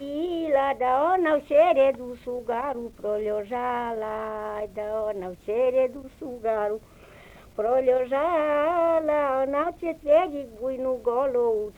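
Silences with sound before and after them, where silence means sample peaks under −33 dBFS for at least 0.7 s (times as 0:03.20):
0:06.77–0:07.58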